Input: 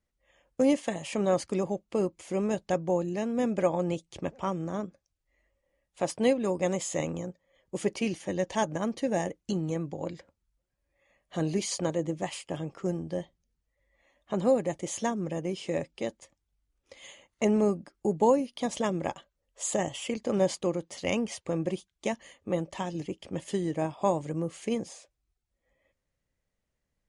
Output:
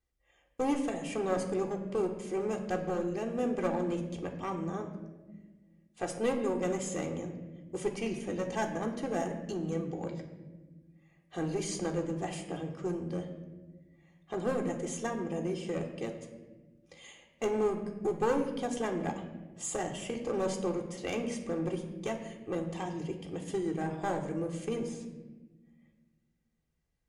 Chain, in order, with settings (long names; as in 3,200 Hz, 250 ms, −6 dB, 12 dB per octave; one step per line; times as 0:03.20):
dynamic equaliser 4,100 Hz, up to −5 dB, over −51 dBFS, Q 1.2
asymmetric clip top −24 dBFS
convolution reverb RT60 1.3 s, pre-delay 3 ms, DRR 1 dB
level −5 dB